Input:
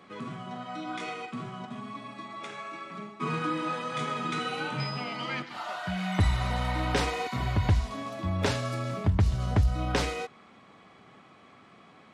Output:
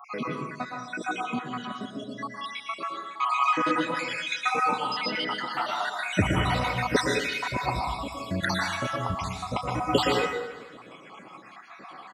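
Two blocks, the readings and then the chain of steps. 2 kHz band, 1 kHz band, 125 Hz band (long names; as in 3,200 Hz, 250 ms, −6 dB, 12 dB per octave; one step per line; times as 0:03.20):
+6.5 dB, +6.0 dB, −5.0 dB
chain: time-frequency cells dropped at random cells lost 76%
repeating echo 223 ms, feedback 41%, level −21 dB
in parallel at −3 dB: downward compressor, threshold −45 dBFS, peak gain reduction 23 dB
on the sum: Bessel high-pass filter 210 Hz, order 2
dense smooth reverb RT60 0.8 s, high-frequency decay 0.45×, pre-delay 105 ms, DRR 0 dB
level +7.5 dB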